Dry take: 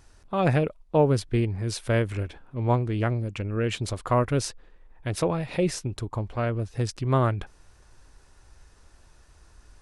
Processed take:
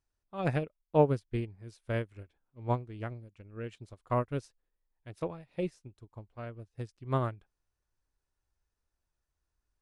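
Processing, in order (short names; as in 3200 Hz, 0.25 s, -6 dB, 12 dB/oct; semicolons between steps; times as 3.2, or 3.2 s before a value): upward expander 2.5:1, over -35 dBFS; gain -2 dB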